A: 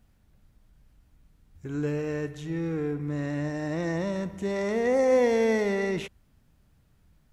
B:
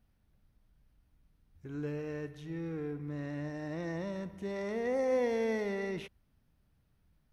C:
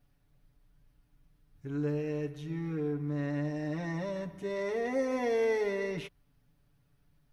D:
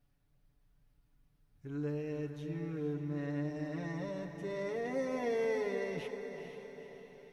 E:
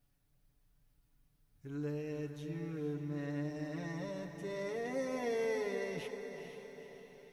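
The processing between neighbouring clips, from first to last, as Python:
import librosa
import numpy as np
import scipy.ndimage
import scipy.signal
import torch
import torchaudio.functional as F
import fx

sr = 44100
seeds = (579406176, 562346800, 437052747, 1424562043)

y1 = fx.peak_eq(x, sr, hz=7300.0, db=-12.5, octaves=0.25)
y1 = y1 * 10.0 ** (-8.5 / 20.0)
y2 = y1 + 0.98 * np.pad(y1, (int(7.0 * sr / 1000.0), 0))[:len(y1)]
y3 = fx.echo_diffused(y2, sr, ms=477, feedback_pct=52, wet_db=-8)
y3 = y3 * 10.0 ** (-5.0 / 20.0)
y4 = fx.high_shelf(y3, sr, hz=4700.0, db=8.5)
y4 = y4 * 10.0 ** (-2.0 / 20.0)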